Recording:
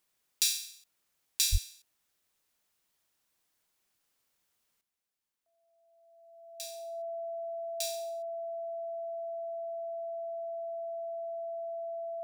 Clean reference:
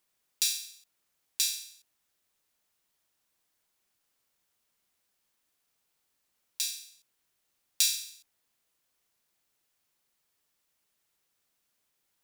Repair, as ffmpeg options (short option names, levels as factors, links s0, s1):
-filter_complex "[0:a]bandreject=f=670:w=30,asplit=3[s0][s1][s2];[s0]afade=t=out:st=1.51:d=0.02[s3];[s1]highpass=f=140:w=0.5412,highpass=f=140:w=1.3066,afade=t=in:st=1.51:d=0.02,afade=t=out:st=1.63:d=0.02[s4];[s2]afade=t=in:st=1.63:d=0.02[s5];[s3][s4][s5]amix=inputs=3:normalize=0,asetnsamples=n=441:p=0,asendcmd='4.81 volume volume 11dB',volume=1"